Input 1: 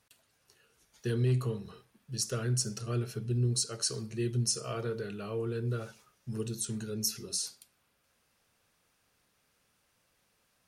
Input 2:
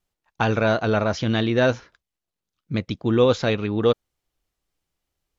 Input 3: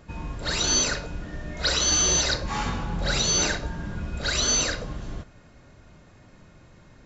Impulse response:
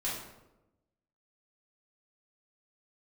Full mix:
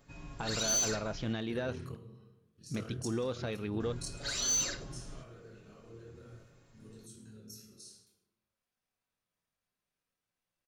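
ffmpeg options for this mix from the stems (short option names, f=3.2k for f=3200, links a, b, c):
-filter_complex "[0:a]tremolo=f=37:d=0.75,adelay=450,volume=-3.5dB,asplit=2[a][b];[b]volume=-10.5dB[c];[1:a]volume=-6dB,asplit=2[d][e];[2:a]highshelf=f=5.7k:g=11.5,aecho=1:1:7.2:0.73,volume=-10dB,asplit=3[f][g][h];[f]atrim=end=1.33,asetpts=PTS-STARTPTS,afade=t=out:st=1.326:d=0.004:c=hsin[i];[g]atrim=start=1.33:end=3.8,asetpts=PTS-STARTPTS,volume=0[j];[h]atrim=start=3.8,asetpts=PTS-STARTPTS,afade=t=in:d=0.004:c=hsin[k];[i][j][k]concat=n=3:v=0:a=1[l];[e]apad=whole_len=490459[m];[a][m]sidechaingate=range=-33dB:threshold=-53dB:ratio=16:detection=peak[n];[n][d]amix=inputs=2:normalize=0,alimiter=limit=-20.5dB:level=0:latency=1:release=229,volume=0dB[o];[3:a]atrim=start_sample=2205[p];[c][p]afir=irnorm=-1:irlink=0[q];[l][o][q]amix=inputs=3:normalize=0,flanger=delay=3.2:depth=2.1:regen=-89:speed=0.47:shape=triangular,asoftclip=type=tanh:threshold=-23.5dB"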